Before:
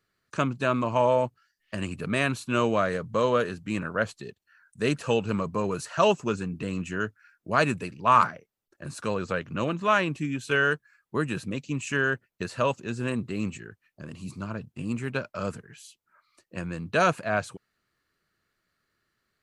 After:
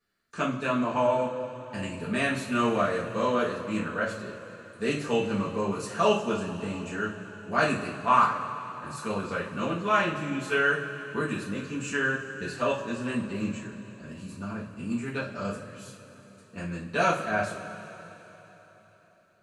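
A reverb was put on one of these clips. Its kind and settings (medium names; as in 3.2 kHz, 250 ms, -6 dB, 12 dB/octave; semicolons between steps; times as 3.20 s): two-slope reverb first 0.35 s, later 3.9 s, from -18 dB, DRR -8 dB; trim -9.5 dB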